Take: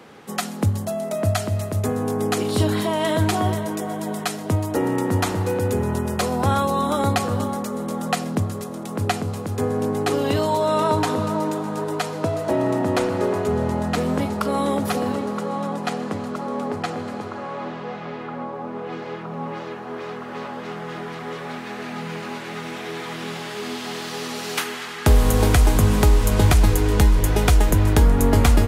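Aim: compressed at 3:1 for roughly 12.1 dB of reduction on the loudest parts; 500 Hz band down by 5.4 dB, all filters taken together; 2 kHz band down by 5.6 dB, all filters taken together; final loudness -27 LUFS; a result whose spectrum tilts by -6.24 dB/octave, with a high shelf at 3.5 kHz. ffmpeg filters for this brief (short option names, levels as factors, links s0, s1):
-af "equalizer=f=500:t=o:g=-6.5,equalizer=f=2000:t=o:g=-4.5,highshelf=f=3500:g=-8.5,acompressor=threshold=0.0398:ratio=3,volume=1.68"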